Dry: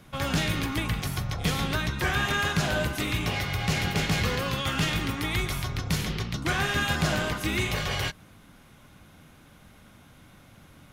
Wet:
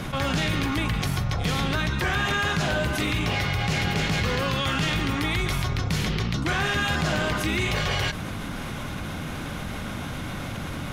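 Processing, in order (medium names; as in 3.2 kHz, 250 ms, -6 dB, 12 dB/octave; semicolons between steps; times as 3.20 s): treble shelf 9.9 kHz -10 dB; level flattener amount 70%; trim -1.5 dB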